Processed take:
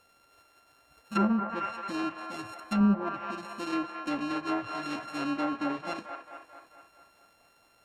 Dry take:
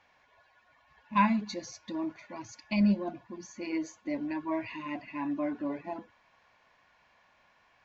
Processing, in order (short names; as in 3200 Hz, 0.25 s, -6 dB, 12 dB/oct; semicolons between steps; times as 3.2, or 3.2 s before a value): sample sorter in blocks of 32 samples; band-limited delay 0.22 s, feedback 57%, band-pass 1100 Hz, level -4 dB; treble ducked by the level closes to 910 Hz, closed at -24.5 dBFS; gain +2 dB